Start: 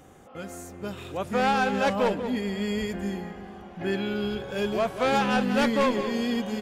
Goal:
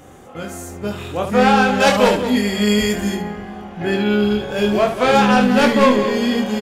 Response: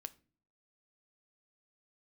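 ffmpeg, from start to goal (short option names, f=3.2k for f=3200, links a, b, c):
-filter_complex "[0:a]asettb=1/sr,asplit=3[a][b][c];[a]atrim=end=1.804[d];[b]atrim=start=1.8:end=3.15,asetpts=PTS-STARTPTS,afade=t=in:d=0.004:c=qsin,afade=t=out:st=1.346:d=0.004:c=qsin,highshelf=f=2.8k:g=10[e];[c]atrim=start=3.146[f];[d][e]acrossfade=d=0.004:c1=hsin:c2=qsin[g];[g][f]acrossfade=d=0.004:c1=qsin:c2=hsin,aecho=1:1:24|72:0.631|0.398,volume=7.5dB"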